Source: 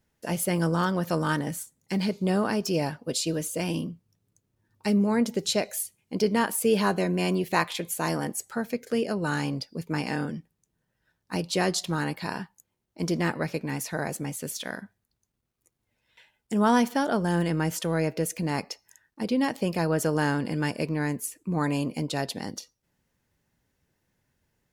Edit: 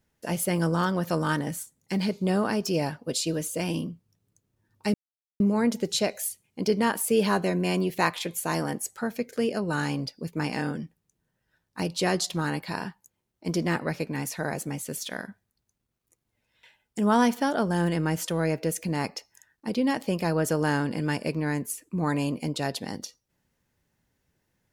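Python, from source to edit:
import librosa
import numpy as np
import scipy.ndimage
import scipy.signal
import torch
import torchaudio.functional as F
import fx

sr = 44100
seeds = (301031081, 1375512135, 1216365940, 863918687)

y = fx.edit(x, sr, fx.insert_silence(at_s=4.94, length_s=0.46), tone=tone)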